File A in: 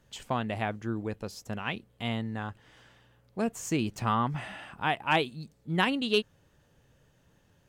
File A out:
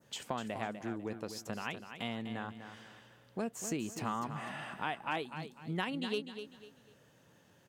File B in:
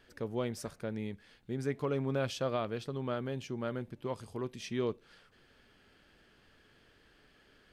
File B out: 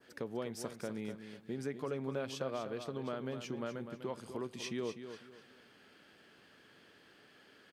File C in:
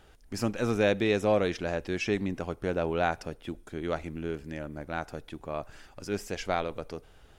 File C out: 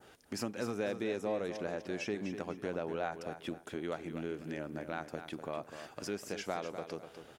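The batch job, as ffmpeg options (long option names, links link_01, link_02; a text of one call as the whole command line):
ffmpeg -i in.wav -filter_complex "[0:a]highpass=160,adynamicequalizer=threshold=0.00447:dfrequency=3100:dqfactor=0.93:tfrequency=3100:tqfactor=0.93:attack=5:release=100:ratio=0.375:range=3:mode=cutabove:tftype=bell,acompressor=threshold=-41dB:ratio=2.5,asplit=2[link_01][link_02];[link_02]aecho=0:1:249|498|747:0.335|0.104|0.0322[link_03];[link_01][link_03]amix=inputs=2:normalize=0,volume=2.5dB" out.wav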